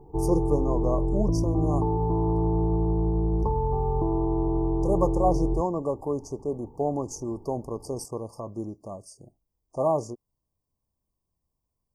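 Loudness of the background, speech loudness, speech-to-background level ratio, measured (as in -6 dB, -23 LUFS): -26.5 LUFS, -30.0 LUFS, -3.5 dB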